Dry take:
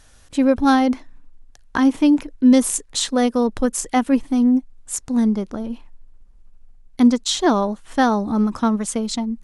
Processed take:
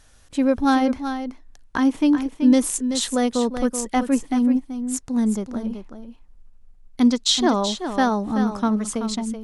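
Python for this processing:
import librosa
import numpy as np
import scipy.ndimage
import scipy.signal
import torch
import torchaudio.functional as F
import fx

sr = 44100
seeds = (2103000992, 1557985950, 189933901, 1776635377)

y = fx.peak_eq(x, sr, hz=4000.0, db=7.0, octaves=1.5, at=(7.01, 7.43))
y = y + 10.0 ** (-9.0 / 20.0) * np.pad(y, (int(380 * sr / 1000.0), 0))[:len(y)]
y = y * librosa.db_to_amplitude(-3.0)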